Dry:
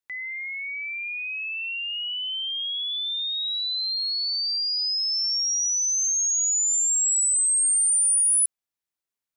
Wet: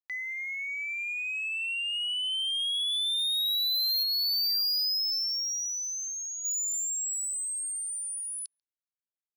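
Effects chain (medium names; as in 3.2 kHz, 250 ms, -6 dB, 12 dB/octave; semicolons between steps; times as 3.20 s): resonant low-pass 4.7 kHz, resonance Q 8; word length cut 10-bit, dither none; 4.03–6.45 s: treble shelf 2.9 kHz -11 dB; reverb removal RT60 1.9 s; saturation -24.5 dBFS, distortion -8 dB; speakerphone echo 140 ms, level -27 dB; trim -2 dB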